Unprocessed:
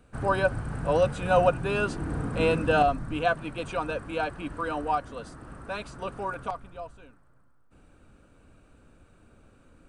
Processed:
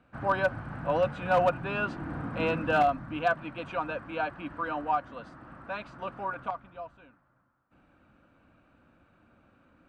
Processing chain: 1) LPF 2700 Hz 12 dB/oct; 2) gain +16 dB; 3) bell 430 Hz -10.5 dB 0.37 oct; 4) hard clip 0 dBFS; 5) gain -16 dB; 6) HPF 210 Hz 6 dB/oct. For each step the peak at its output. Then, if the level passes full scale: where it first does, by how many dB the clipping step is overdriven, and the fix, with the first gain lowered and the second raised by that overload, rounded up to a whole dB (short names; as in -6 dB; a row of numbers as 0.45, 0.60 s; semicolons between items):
-9.5, +6.5, +5.0, 0.0, -16.0, -14.0 dBFS; step 2, 5.0 dB; step 2 +11 dB, step 5 -11 dB